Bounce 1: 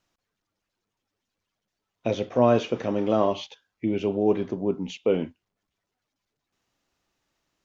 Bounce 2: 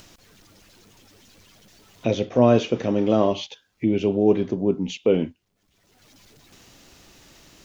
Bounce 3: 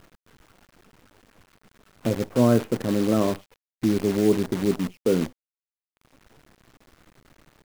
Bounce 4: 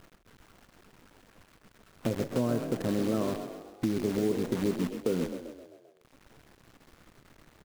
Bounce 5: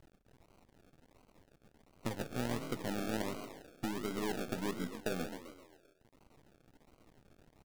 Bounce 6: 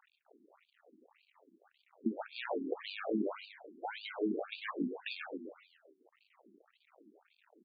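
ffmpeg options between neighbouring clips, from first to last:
-filter_complex "[0:a]equalizer=f=1100:w=0.67:g=-6.5,asplit=2[s0][s1];[s1]acompressor=mode=upward:threshold=0.0398:ratio=2.5,volume=0.944[s2];[s0][s2]amix=inputs=2:normalize=0"
-af "firequalizer=gain_entry='entry(230,0);entry(770,-8);entry(1400,1);entry(3400,-27)':delay=0.05:min_phase=1,acrusher=bits=6:dc=4:mix=0:aa=0.000001"
-filter_complex "[0:a]acompressor=threshold=0.0708:ratio=6,asplit=7[s0][s1][s2][s3][s4][s5][s6];[s1]adelay=131,afreqshift=33,volume=0.355[s7];[s2]adelay=262,afreqshift=66,volume=0.195[s8];[s3]adelay=393,afreqshift=99,volume=0.107[s9];[s4]adelay=524,afreqshift=132,volume=0.0589[s10];[s5]adelay=655,afreqshift=165,volume=0.0324[s11];[s6]adelay=786,afreqshift=198,volume=0.0178[s12];[s0][s7][s8][s9][s10][s11][s12]amix=inputs=7:normalize=0,volume=0.794"
-af "aeval=exprs='if(lt(val(0),0),0.447*val(0),val(0))':c=same,acrusher=samples=35:mix=1:aa=0.000001:lfo=1:lforange=21:lforate=1.4,volume=0.501"
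-af "afftfilt=real='re*between(b*sr/1024,270*pow(3400/270,0.5+0.5*sin(2*PI*1.8*pts/sr))/1.41,270*pow(3400/270,0.5+0.5*sin(2*PI*1.8*pts/sr))*1.41)':imag='im*between(b*sr/1024,270*pow(3400/270,0.5+0.5*sin(2*PI*1.8*pts/sr))/1.41,270*pow(3400/270,0.5+0.5*sin(2*PI*1.8*pts/sr))*1.41)':win_size=1024:overlap=0.75,volume=2.51"

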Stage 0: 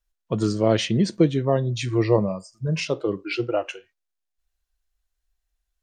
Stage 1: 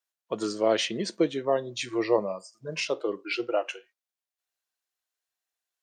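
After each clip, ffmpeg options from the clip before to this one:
-af "highpass=400,volume=0.841"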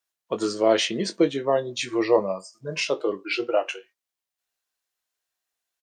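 -filter_complex "[0:a]asplit=2[s0][s1];[s1]adelay=21,volume=0.335[s2];[s0][s2]amix=inputs=2:normalize=0,volume=1.5"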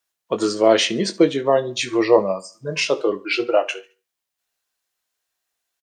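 -af "aecho=1:1:71|142|213:0.0891|0.0312|0.0109,volume=1.78"

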